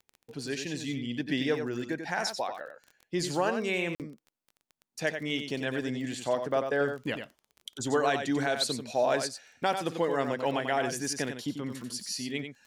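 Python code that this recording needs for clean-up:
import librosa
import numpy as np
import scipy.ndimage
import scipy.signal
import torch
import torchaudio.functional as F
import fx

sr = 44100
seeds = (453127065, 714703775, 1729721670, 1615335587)

y = fx.fix_declick_ar(x, sr, threshold=6.5)
y = fx.fix_interpolate(y, sr, at_s=(3.95,), length_ms=48.0)
y = fx.fix_echo_inverse(y, sr, delay_ms=92, level_db=-7.5)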